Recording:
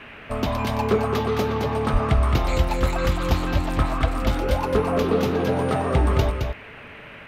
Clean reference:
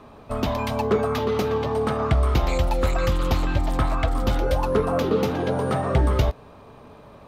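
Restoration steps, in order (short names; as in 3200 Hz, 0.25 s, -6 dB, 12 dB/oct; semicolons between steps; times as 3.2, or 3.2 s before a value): de-plosive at 1.92; noise print and reduce 6 dB; inverse comb 0.217 s -6 dB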